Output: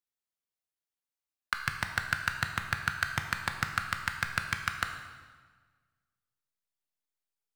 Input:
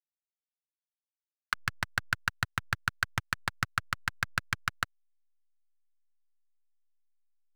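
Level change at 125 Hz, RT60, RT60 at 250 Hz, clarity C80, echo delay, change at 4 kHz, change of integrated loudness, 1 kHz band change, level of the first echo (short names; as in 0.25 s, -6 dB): 0.0 dB, 1.5 s, 1.6 s, 8.5 dB, none, +1.0 dB, +1.0 dB, +1.0 dB, none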